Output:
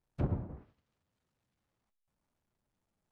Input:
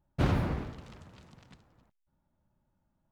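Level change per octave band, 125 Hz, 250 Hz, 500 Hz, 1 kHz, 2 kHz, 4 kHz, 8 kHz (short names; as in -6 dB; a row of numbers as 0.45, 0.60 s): -6.0 dB, -7.5 dB, -8.0 dB, -12.5 dB, -19.0 dB, under -20 dB, n/a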